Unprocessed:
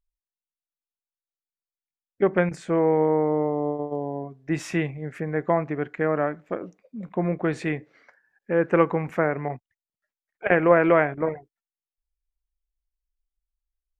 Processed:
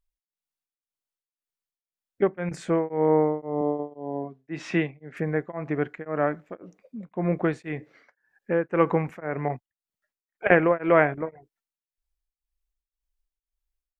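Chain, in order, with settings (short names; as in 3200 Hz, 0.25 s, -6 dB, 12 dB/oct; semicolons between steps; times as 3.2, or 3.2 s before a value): 3.61–5.17 Chebyshev band-pass 190–4000 Hz, order 2; beating tremolo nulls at 1.9 Hz; gain +2 dB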